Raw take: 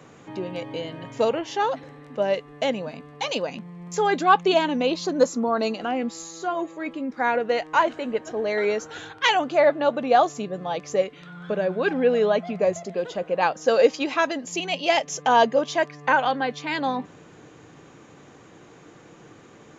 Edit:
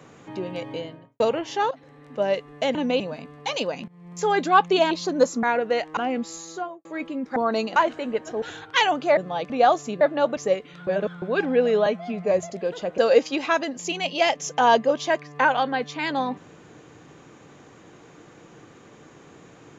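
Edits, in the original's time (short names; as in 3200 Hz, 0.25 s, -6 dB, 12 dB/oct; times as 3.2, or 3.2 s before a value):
0.7–1.2 studio fade out
1.71–2.23 fade in, from -14.5 dB
3.63–4.1 fade in equal-power, from -17.5 dB
4.66–4.91 move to 2.75
5.43–5.83 swap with 7.22–7.76
6.35–6.71 studio fade out
8.42–8.9 cut
9.65–10.01 swap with 10.52–10.85
11.35–11.7 reverse
12.34–12.64 stretch 1.5×
13.31–13.66 cut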